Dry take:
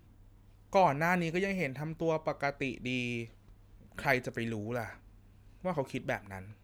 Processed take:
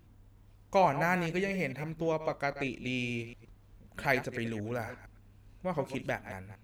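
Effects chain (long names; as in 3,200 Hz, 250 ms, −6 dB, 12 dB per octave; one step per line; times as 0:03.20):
delay that plays each chunk backwards 115 ms, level −11 dB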